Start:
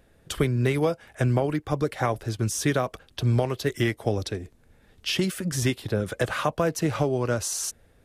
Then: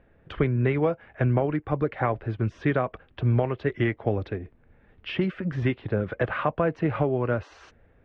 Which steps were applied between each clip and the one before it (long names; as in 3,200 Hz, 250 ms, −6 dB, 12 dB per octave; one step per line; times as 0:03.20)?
low-pass filter 2,500 Hz 24 dB per octave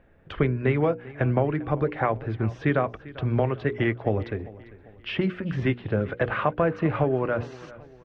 mains-hum notches 60/120/180/240/300/360/420/480 Hz
repeating echo 396 ms, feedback 44%, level −19 dB
level +1.5 dB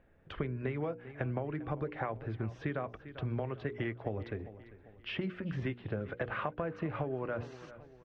downward compressor, threshold −24 dBFS, peak gain reduction 7.5 dB
level −7.5 dB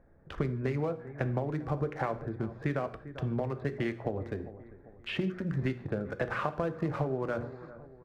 adaptive Wiener filter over 15 samples
reverb whose tail is shaped and stops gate 190 ms falling, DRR 11 dB
level +4 dB